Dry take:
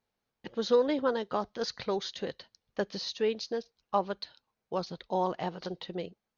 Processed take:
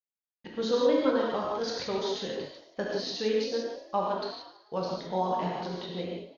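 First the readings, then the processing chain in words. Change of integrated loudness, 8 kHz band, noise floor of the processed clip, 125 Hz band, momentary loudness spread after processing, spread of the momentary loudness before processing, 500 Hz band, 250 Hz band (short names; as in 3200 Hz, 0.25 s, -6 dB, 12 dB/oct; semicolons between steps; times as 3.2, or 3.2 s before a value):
+2.5 dB, n/a, under -85 dBFS, +3.0 dB, 12 LU, 13 LU, +2.0 dB, +3.5 dB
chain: expander -56 dBFS; frequency-shifting echo 0.11 s, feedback 52%, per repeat +49 Hz, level -14 dB; non-linear reverb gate 0.2 s flat, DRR -3.5 dB; gain -3 dB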